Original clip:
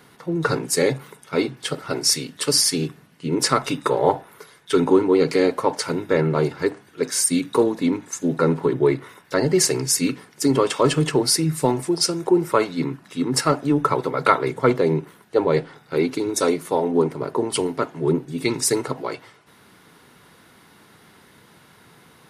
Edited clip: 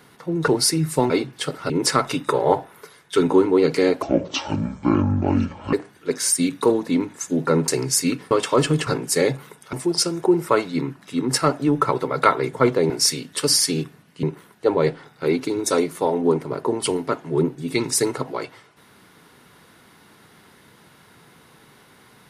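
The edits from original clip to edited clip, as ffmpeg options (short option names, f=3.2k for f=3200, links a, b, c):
-filter_complex "[0:a]asplit=12[a][b][c][d][e][f][g][h][i][j][k][l];[a]atrim=end=0.482[m];[b]atrim=start=11.138:end=11.762[n];[c]atrim=start=1.338:end=1.942[o];[d]atrim=start=3.268:end=5.594[p];[e]atrim=start=5.59:end=6.65,asetpts=PTS-STARTPTS,asetrate=27342,aresample=44100[q];[f]atrim=start=6.646:end=8.602[r];[g]atrim=start=9.648:end=10.282[s];[h]atrim=start=10.578:end=11.142[t];[i]atrim=start=0.478:end=1.342[u];[j]atrim=start=11.758:end=14.932[v];[k]atrim=start=1.938:end=3.272[w];[l]atrim=start=14.928[x];[m][n]acrossfade=d=0.004:c1=hsin:c2=hsin[y];[y][o]acrossfade=d=0.004:c1=hsin:c2=hsin[z];[z][p]acrossfade=d=0.004:c1=hsin:c2=hsin[aa];[aa][q]acrossfade=d=0.004:c1=hsin:c2=hsin[ab];[ab][r]acrossfade=d=0.004:c1=hsin:c2=hsin[ac];[ac][s]acrossfade=d=0.004:c1=hsin:c2=hsin[ad];[ad][t]acrossfade=d=0.004:c1=hsin:c2=hsin[ae];[ae][u]acrossfade=d=0.004:c1=hsin:c2=hsin[af];[af][v]acrossfade=d=0.004:c1=hsin:c2=hsin[ag];[ag][w]acrossfade=d=0.004:c1=hsin:c2=hsin[ah];[ah][x]acrossfade=d=0.004:c1=hsin:c2=hsin"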